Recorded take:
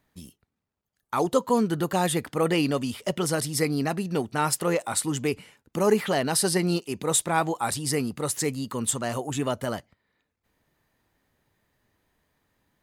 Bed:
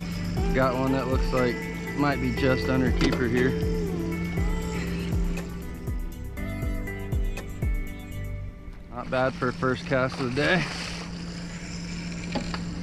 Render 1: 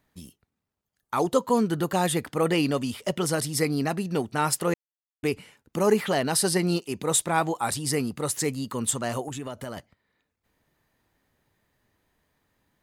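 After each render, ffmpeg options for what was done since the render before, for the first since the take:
ffmpeg -i in.wav -filter_complex "[0:a]asettb=1/sr,asplit=3[link_01][link_02][link_03];[link_01]atrim=end=9.284[link_04];[link_02]atrim=start=9.28:end=9.77,asetpts=PTS-STARTPTS,afade=type=in:duration=0.004:curve=qsin,afade=type=out:start_time=0.486:duration=0.004:curve=qsin,acompressor=threshold=-32dB:ratio=4:attack=3.2:release=140:knee=1:detection=peak[link_05];[link_03]atrim=start=9.766[link_06];[link_04][link_05]acrossfade=duration=0.004:curve1=hsin:curve2=qsin[link_07];[link_07][link_06]acrossfade=duration=0.004:curve1=qsin:curve2=hsin,asplit=3[link_08][link_09][link_10];[link_08]atrim=end=4.74,asetpts=PTS-STARTPTS,afade=type=out:start_time=4.736:duration=0.004:curve=hsin[link_11];[link_09]atrim=start=4.74:end=5.23,asetpts=PTS-STARTPTS,volume=0[link_12];[link_10]atrim=start=5.23,asetpts=PTS-STARTPTS,afade=type=in:duration=0.004:curve=hsin[link_13];[link_11][link_12][link_13]concat=n=3:v=0:a=1" out.wav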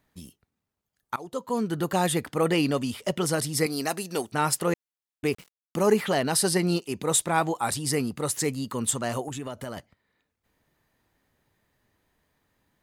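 ffmpeg -i in.wav -filter_complex "[0:a]asettb=1/sr,asplit=3[link_01][link_02][link_03];[link_01]atrim=end=3.664[link_04];[link_02]atrim=start=3.66:end=4.32,asetpts=PTS-STARTPTS,afade=type=in:duration=0.004:curve=qsin,afade=type=out:start_time=0.656:duration=0.004:curve=qsin,bass=frequency=250:gain=-12,treble=frequency=4000:gain=10[link_05];[link_03]atrim=start=4.316[link_06];[link_04][link_05]acrossfade=duration=0.004:curve1=hsin:curve2=qsin[link_07];[link_07][link_06]acrossfade=duration=0.004:curve1=qsin:curve2=hsin,asettb=1/sr,asplit=3[link_08][link_09][link_10];[link_08]atrim=end=5.294[link_11];[link_09]atrim=start=5.29:end=5.83,asetpts=PTS-STARTPTS,afade=type=in:duration=0.004:curve=qsin,afade=type=out:start_time=0.536:duration=0.004:curve=qsin,aeval=exprs='val(0)*gte(abs(val(0)),0.00708)':channel_layout=same[link_12];[link_10]atrim=start=5.826[link_13];[link_11][link_12]acrossfade=duration=0.004:curve1=hsin:curve2=qsin[link_14];[link_14][link_13]acrossfade=duration=0.004:curve1=qsin:curve2=hsin,asplit=2[link_15][link_16];[link_15]atrim=end=1.16,asetpts=PTS-STARTPTS,afade=type=out:start_time=1.156:duration=0.004:curve=hsin:silence=0.0707946[link_17];[link_16]atrim=start=1.16,asetpts=PTS-STARTPTS,afade=type=in:duration=0.76:silence=0.0707946[link_18];[link_17][link_18]concat=n=2:v=0:a=1" out.wav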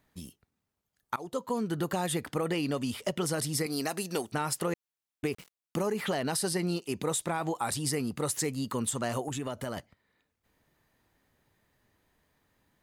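ffmpeg -i in.wav -af "alimiter=limit=-15.5dB:level=0:latency=1:release=74,acompressor=threshold=-27dB:ratio=6" out.wav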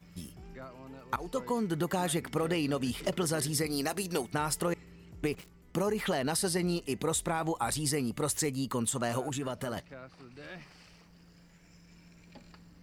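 ffmpeg -i in.wav -i bed.wav -filter_complex "[1:a]volume=-23.5dB[link_01];[0:a][link_01]amix=inputs=2:normalize=0" out.wav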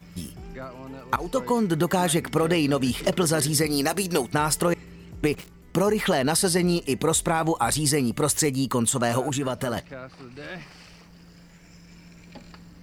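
ffmpeg -i in.wav -af "volume=8.5dB" out.wav

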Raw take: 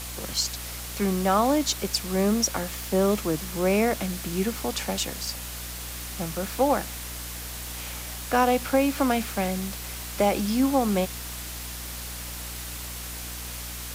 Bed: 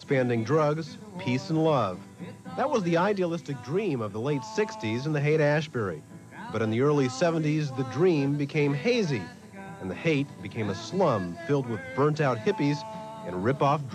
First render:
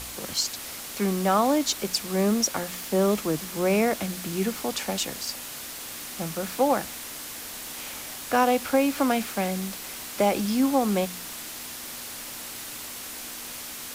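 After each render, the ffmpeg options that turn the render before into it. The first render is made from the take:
ffmpeg -i in.wav -af "bandreject=frequency=60:width_type=h:width=4,bandreject=frequency=120:width_type=h:width=4,bandreject=frequency=180:width_type=h:width=4" out.wav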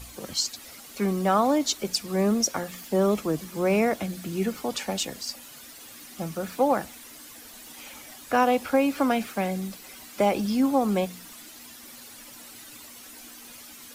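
ffmpeg -i in.wav -af "afftdn=noise_reduction=11:noise_floor=-38" out.wav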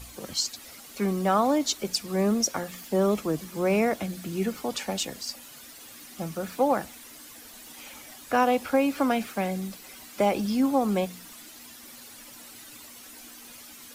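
ffmpeg -i in.wav -af "volume=-1dB" out.wav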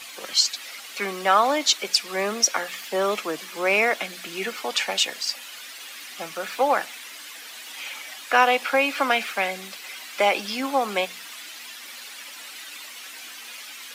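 ffmpeg -i in.wav -af "highpass=400,equalizer=frequency=2500:width=0.5:gain=13" out.wav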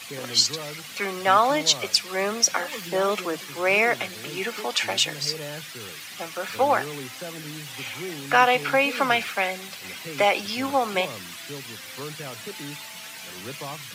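ffmpeg -i in.wav -i bed.wav -filter_complex "[1:a]volume=-13dB[link_01];[0:a][link_01]amix=inputs=2:normalize=0" out.wav

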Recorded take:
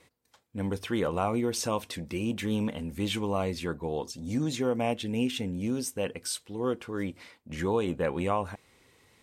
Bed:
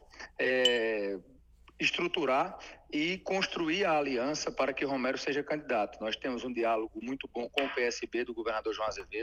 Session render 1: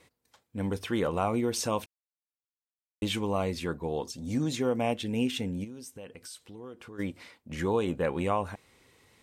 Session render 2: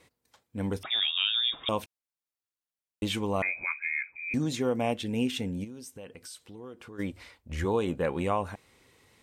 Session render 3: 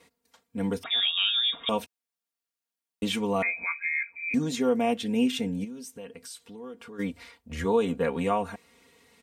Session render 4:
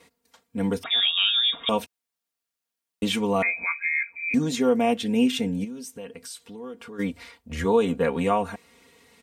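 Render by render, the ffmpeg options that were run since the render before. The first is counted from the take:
ffmpeg -i in.wav -filter_complex "[0:a]asplit=3[link_01][link_02][link_03];[link_01]afade=type=out:start_time=5.63:duration=0.02[link_04];[link_02]acompressor=threshold=-45dB:ratio=3:attack=3.2:release=140:knee=1:detection=peak,afade=type=in:start_time=5.63:duration=0.02,afade=type=out:start_time=6.98:duration=0.02[link_05];[link_03]afade=type=in:start_time=6.98:duration=0.02[link_06];[link_04][link_05][link_06]amix=inputs=3:normalize=0,asplit=3[link_07][link_08][link_09];[link_07]atrim=end=1.86,asetpts=PTS-STARTPTS,afade=type=out:start_time=1.856:duration=0.004:curve=hsin[link_10];[link_08]atrim=start=1.86:end=3.02,asetpts=PTS-STARTPTS,volume=0[link_11];[link_09]atrim=start=3.02,asetpts=PTS-STARTPTS,afade=type=in:duration=0.004:curve=hsin[link_12];[link_10][link_11][link_12]concat=n=3:v=0:a=1" out.wav
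ffmpeg -i in.wav -filter_complex "[0:a]asettb=1/sr,asplit=3[link_01][link_02][link_03];[link_01]atrim=end=0.834[link_04];[link_02]atrim=start=0.83:end=1.69,asetpts=PTS-STARTPTS,afade=type=in:duration=0.004:curve=qsin,afade=type=out:start_time=0.856:duration=0.004:curve=qsin,lowpass=frequency=3200:width_type=q:width=0.5098,lowpass=frequency=3200:width_type=q:width=0.6013,lowpass=frequency=3200:width_type=q:width=0.9,lowpass=frequency=3200:width_type=q:width=2.563,afreqshift=-3800[link_05];[link_03]atrim=start=1.686[link_06];[link_04][link_05]acrossfade=duration=0.004:curve1=hsin:curve2=qsin[link_07];[link_07][link_06]acrossfade=duration=0.004:curve1=qsin:curve2=hsin,asettb=1/sr,asplit=3[link_08][link_09][link_10];[link_08]atrim=end=3.424[link_11];[link_09]atrim=start=3.42:end=4.34,asetpts=PTS-STARTPTS,afade=type=in:duration=0.004:curve=qsin,afade=type=out:start_time=0.916:duration=0.004:curve=qsin,lowpass=frequency=2200:width_type=q:width=0.5098,lowpass=frequency=2200:width_type=q:width=0.6013,lowpass=frequency=2200:width_type=q:width=0.9,lowpass=frequency=2200:width_type=q:width=2.563,afreqshift=-2600[link_12];[link_10]atrim=start=4.336[link_13];[link_11][link_12]acrossfade=duration=0.004:curve1=hsin:curve2=qsin[link_14];[link_14][link_13]acrossfade=duration=0.004:curve1=qsin:curve2=hsin,asplit=3[link_15][link_16][link_17];[link_15]afade=type=out:start_time=7.11:duration=0.02[link_18];[link_16]asubboost=boost=10.5:cutoff=58,afade=type=in:start_time=7.11:duration=0.02,afade=type=out:start_time=7.64:duration=0.02[link_19];[link_17]afade=type=in:start_time=7.64:duration=0.02[link_20];[link_18][link_19][link_20]amix=inputs=3:normalize=0" out.wav
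ffmpeg -i in.wav -af "highpass=72,aecho=1:1:4.3:0.81" out.wav
ffmpeg -i in.wav -af "volume=3.5dB" out.wav

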